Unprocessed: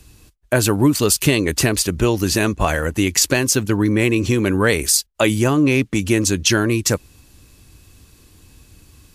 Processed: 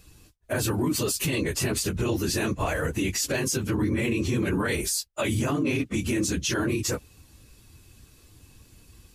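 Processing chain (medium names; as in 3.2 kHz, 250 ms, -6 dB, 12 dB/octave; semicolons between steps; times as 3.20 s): phase randomisation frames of 50 ms; peak limiter -12.5 dBFS, peak gain reduction 9.5 dB; trim -5 dB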